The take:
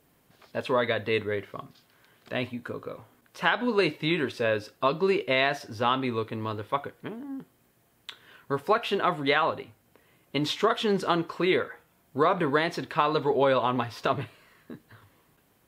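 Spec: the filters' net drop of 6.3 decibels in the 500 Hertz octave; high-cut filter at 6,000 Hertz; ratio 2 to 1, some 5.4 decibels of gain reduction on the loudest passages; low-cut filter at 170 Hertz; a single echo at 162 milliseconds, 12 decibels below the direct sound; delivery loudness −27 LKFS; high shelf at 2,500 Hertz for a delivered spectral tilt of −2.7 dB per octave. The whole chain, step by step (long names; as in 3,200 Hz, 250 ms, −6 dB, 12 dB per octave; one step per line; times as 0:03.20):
high-pass filter 170 Hz
low-pass filter 6,000 Hz
parametric band 500 Hz −8 dB
high-shelf EQ 2,500 Hz −3 dB
downward compressor 2 to 1, threshold −31 dBFS
single-tap delay 162 ms −12 dB
level +7.5 dB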